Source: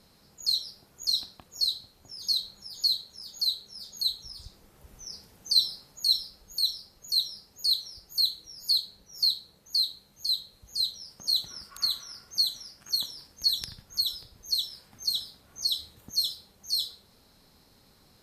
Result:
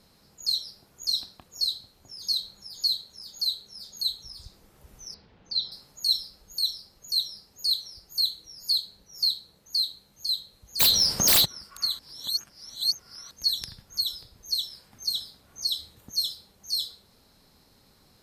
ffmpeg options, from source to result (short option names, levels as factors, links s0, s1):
-filter_complex "[0:a]asettb=1/sr,asplit=3[s0][s1][s2];[s0]atrim=end=5.144[s3];[s1]atrim=start=5.14:end=5.72,asetpts=PTS-STARTPTS,afade=t=in:d=0.004:c=qsin,afade=t=out:st=0.576:d=0.004:c=qsin,lowpass=f=3700:w=0.5412,lowpass=f=3700:w=1.3066[s4];[s2]atrim=start=5.716[s5];[s3][s4]acrossfade=d=0.004:c1=hsin:c2=qsin[s6];[s6][s5]acrossfade=d=0.004:c1=qsin:c2=hsin,asplit=3[s7][s8][s9];[s7]afade=t=out:st=10.79:d=0.02[s10];[s8]aeval=exprs='0.178*sin(PI/2*10*val(0)/0.178)':c=same,afade=t=in:st=10.79:d=0.02,afade=t=out:st=11.44:d=0.02[s11];[s9]afade=t=in:st=11.44:d=0.02[s12];[s10][s11][s12]amix=inputs=3:normalize=0,asplit=3[s13][s14][s15];[s13]atrim=end=11.992[s16];[s14]atrim=start=11.988:end=13.312,asetpts=PTS-STARTPTS,areverse[s17];[s15]atrim=start=13.308[s18];[s16][s17]acrossfade=d=0.004:c1=hsin:c2=hsin[s19];[s19][s18]acrossfade=d=0.004:c1=hsin:c2=hsin"